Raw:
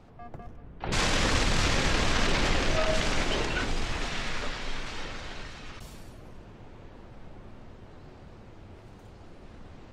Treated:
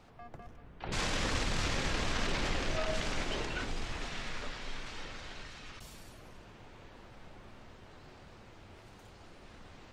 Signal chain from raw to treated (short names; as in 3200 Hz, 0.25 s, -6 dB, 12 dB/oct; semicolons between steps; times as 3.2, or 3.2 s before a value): mismatched tape noise reduction encoder only; gain -7.5 dB